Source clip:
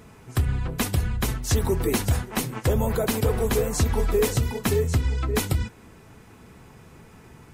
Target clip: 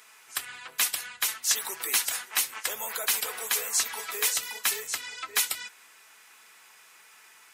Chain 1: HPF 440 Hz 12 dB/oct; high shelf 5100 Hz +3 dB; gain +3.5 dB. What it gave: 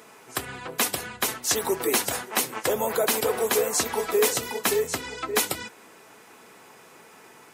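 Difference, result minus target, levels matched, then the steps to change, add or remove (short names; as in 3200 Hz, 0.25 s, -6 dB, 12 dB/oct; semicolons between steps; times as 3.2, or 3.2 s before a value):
500 Hz band +16.5 dB
change: HPF 1600 Hz 12 dB/oct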